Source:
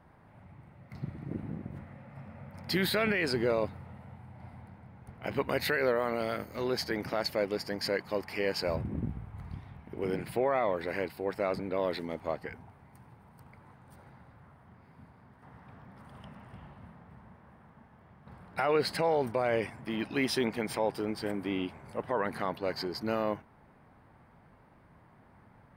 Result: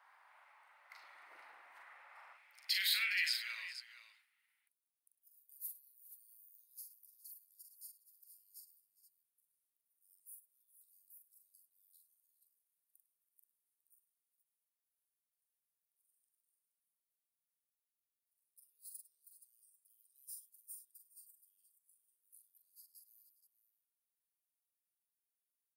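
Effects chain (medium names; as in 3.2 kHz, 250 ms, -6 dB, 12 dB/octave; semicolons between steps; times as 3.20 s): inverse Chebyshev high-pass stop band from 160 Hz, stop band 80 dB, from 2.32 s stop band from 360 Hz, from 4.20 s stop band from 2.1 kHz; multi-tap echo 43/102/412/474 ms -5/-17/-18.5/-12 dB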